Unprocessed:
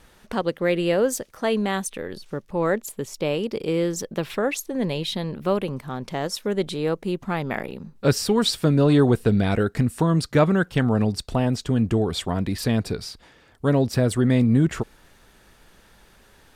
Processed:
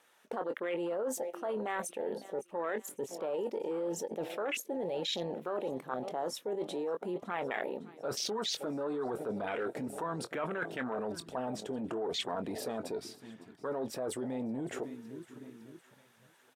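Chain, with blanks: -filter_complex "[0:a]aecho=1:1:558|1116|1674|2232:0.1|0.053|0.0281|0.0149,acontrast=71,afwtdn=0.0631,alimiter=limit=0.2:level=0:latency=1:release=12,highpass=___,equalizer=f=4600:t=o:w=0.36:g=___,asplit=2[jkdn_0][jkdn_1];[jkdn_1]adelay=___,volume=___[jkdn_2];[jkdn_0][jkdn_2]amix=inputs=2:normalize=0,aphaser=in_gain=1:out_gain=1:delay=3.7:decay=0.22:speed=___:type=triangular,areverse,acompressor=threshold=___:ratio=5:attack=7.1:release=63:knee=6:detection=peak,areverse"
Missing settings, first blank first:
520, -6, 23, 0.224, 0.97, 0.02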